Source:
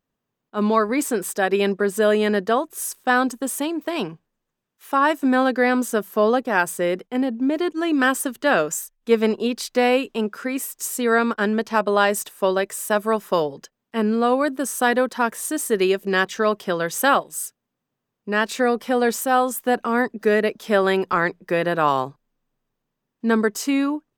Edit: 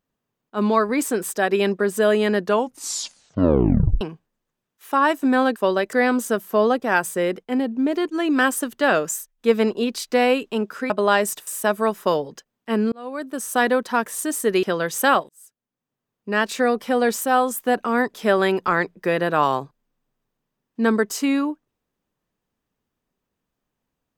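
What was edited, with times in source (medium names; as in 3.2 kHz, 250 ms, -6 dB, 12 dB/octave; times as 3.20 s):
2.38 s: tape stop 1.63 s
10.53–11.79 s: delete
12.36–12.73 s: move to 5.56 s
14.18–14.88 s: fade in
15.89–16.63 s: delete
17.29–18.38 s: fade in
20.14–20.59 s: delete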